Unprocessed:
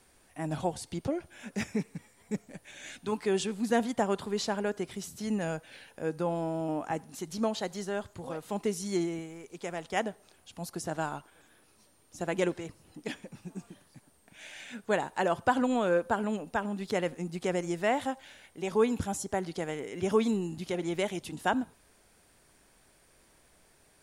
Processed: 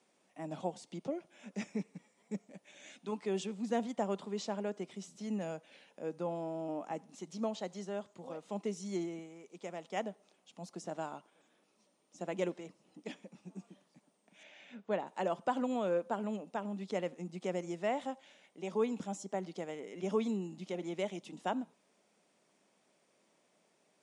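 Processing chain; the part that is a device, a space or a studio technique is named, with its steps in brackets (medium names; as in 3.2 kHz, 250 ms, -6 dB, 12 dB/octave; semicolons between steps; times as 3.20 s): television speaker (cabinet simulation 180–7700 Hz, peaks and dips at 190 Hz +5 dB, 590 Hz +4 dB, 1.6 kHz -7 dB, 4.4 kHz -4 dB); 14.43–15.07 s: distance through air 140 m; trim -7.5 dB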